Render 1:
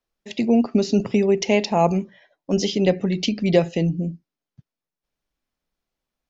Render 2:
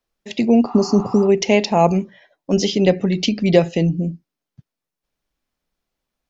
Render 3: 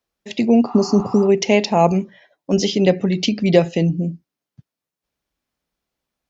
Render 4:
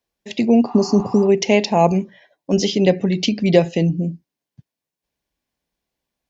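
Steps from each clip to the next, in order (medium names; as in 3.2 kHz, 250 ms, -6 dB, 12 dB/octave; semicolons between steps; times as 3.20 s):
spectral replace 0.69–1.25 s, 730–4200 Hz before; trim +3.5 dB
high-pass 45 Hz
band-stop 1.3 kHz, Q 5.5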